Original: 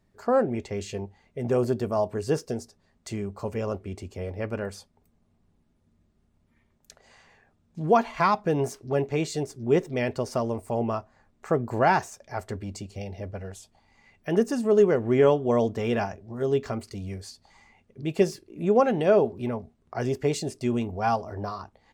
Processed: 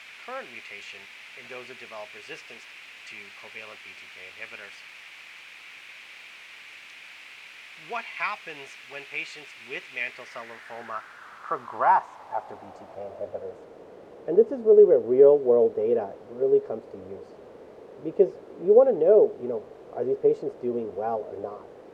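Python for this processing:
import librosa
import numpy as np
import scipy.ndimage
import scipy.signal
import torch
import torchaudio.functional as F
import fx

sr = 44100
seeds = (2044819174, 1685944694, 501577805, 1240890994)

y = fx.dmg_noise_colour(x, sr, seeds[0], colour='pink', level_db=-40.0)
y = fx.filter_sweep_bandpass(y, sr, from_hz=2400.0, to_hz=470.0, start_s=9.94, end_s=13.7, q=4.0)
y = y * librosa.db_to_amplitude(7.5)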